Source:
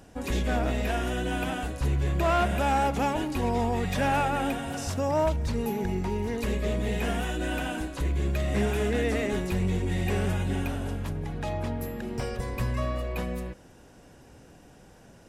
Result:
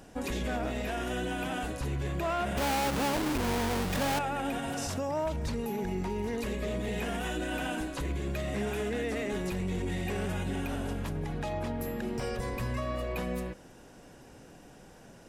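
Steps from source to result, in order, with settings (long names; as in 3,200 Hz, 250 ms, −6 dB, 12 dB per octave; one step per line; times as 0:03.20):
0:02.57–0:04.19: each half-wave held at its own peak
parametric band 74 Hz −6.5 dB 1.2 octaves
brickwall limiter −26 dBFS, peak gain reduction 10 dB
level +1 dB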